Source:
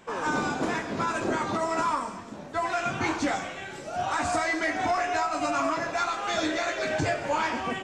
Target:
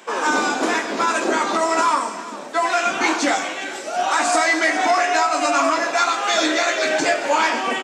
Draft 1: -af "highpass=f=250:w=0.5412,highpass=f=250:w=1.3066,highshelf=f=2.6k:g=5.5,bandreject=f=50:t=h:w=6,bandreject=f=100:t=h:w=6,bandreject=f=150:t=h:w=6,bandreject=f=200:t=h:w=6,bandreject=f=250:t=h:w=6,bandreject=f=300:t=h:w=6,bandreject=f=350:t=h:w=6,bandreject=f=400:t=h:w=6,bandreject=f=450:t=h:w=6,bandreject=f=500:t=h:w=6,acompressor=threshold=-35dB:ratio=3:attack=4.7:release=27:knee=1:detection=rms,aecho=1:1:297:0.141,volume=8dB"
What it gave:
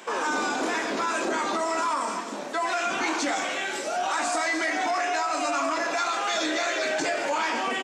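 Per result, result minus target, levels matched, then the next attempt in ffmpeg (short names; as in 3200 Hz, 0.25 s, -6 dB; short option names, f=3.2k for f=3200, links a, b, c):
compressor: peak gain reduction +10 dB; echo 0.108 s early
-af "highpass=f=250:w=0.5412,highpass=f=250:w=1.3066,highshelf=f=2.6k:g=5.5,bandreject=f=50:t=h:w=6,bandreject=f=100:t=h:w=6,bandreject=f=150:t=h:w=6,bandreject=f=200:t=h:w=6,bandreject=f=250:t=h:w=6,bandreject=f=300:t=h:w=6,bandreject=f=350:t=h:w=6,bandreject=f=400:t=h:w=6,bandreject=f=450:t=h:w=6,bandreject=f=500:t=h:w=6,aecho=1:1:297:0.141,volume=8dB"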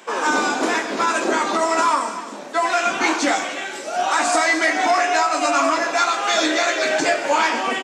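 echo 0.108 s early
-af "highpass=f=250:w=0.5412,highpass=f=250:w=1.3066,highshelf=f=2.6k:g=5.5,bandreject=f=50:t=h:w=6,bandreject=f=100:t=h:w=6,bandreject=f=150:t=h:w=6,bandreject=f=200:t=h:w=6,bandreject=f=250:t=h:w=6,bandreject=f=300:t=h:w=6,bandreject=f=350:t=h:w=6,bandreject=f=400:t=h:w=6,bandreject=f=450:t=h:w=6,bandreject=f=500:t=h:w=6,aecho=1:1:405:0.141,volume=8dB"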